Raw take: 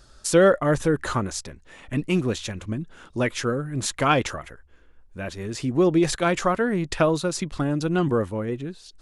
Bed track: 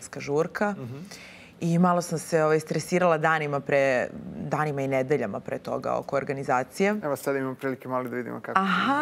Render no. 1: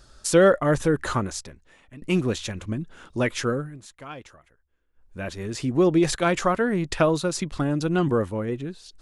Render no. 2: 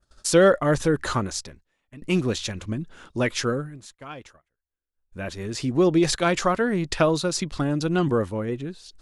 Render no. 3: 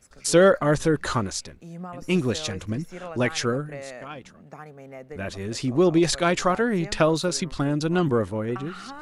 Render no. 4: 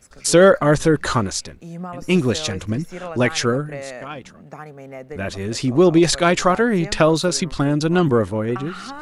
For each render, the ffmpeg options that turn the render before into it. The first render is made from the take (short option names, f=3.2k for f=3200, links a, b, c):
-filter_complex "[0:a]asplit=4[a][b][c][d];[a]atrim=end=2.02,asetpts=PTS-STARTPTS,afade=t=out:st=1.19:d=0.83:silence=0.0668344[e];[b]atrim=start=2.02:end=3.78,asetpts=PTS-STARTPTS,afade=t=in:d=0.004:c=hsin:silence=0.0668344,afade=t=out:st=1.49:d=0.27:c=qsin:silence=0.112202[f];[c]atrim=start=3.78:end=4.93,asetpts=PTS-STARTPTS,volume=-19dB[g];[d]atrim=start=4.93,asetpts=PTS-STARTPTS,afade=t=in:d=0.27:c=qsin:silence=0.112202[h];[e][f][g][h]concat=n=4:v=0:a=1"
-af "agate=range=-19dB:threshold=-49dB:ratio=16:detection=peak,adynamicequalizer=threshold=0.00708:dfrequency=4700:dqfactor=1.3:tfrequency=4700:tqfactor=1.3:attack=5:release=100:ratio=0.375:range=2.5:mode=boostabove:tftype=bell"
-filter_complex "[1:a]volume=-16dB[a];[0:a][a]amix=inputs=2:normalize=0"
-af "volume=5.5dB,alimiter=limit=-3dB:level=0:latency=1"